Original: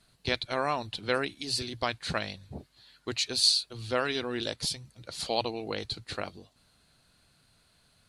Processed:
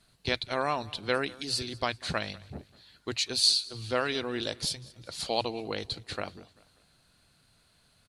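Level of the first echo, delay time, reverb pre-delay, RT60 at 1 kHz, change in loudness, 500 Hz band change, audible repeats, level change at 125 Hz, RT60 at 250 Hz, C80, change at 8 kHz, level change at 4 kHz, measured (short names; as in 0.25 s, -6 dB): -22.0 dB, 0.195 s, none, none, 0.0 dB, 0.0 dB, 2, 0.0 dB, none, none, 0.0 dB, 0.0 dB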